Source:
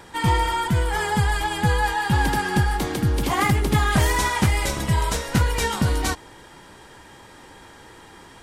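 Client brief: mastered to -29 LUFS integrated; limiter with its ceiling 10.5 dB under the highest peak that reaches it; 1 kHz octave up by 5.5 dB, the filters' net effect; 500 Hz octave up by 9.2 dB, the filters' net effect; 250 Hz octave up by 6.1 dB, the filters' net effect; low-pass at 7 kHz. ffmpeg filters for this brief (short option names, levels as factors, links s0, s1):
-af "lowpass=7000,equalizer=f=250:t=o:g=6,equalizer=f=500:t=o:g=8.5,equalizer=f=1000:t=o:g=3.5,volume=0.398,alimiter=limit=0.106:level=0:latency=1"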